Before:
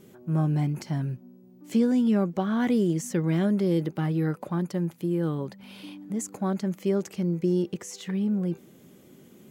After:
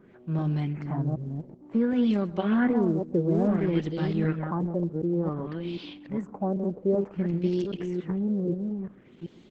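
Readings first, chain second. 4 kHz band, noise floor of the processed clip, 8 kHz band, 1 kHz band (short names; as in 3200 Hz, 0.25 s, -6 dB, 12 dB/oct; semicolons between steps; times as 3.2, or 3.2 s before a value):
-1.5 dB, -54 dBFS, under -20 dB, +0.5 dB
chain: reverse delay 0.386 s, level -4 dB; echo 0.131 s -20.5 dB; LFO low-pass sine 0.56 Hz 460–4100 Hz; gain -2.5 dB; Opus 12 kbps 48000 Hz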